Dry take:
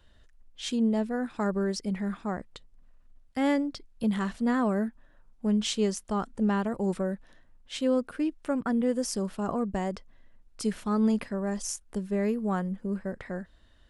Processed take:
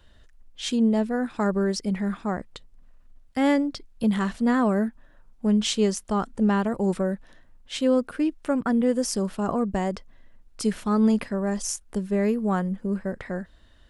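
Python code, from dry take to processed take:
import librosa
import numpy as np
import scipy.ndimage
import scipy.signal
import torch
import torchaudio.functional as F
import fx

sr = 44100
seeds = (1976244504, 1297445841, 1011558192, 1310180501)

y = F.gain(torch.from_numpy(x), 4.5).numpy()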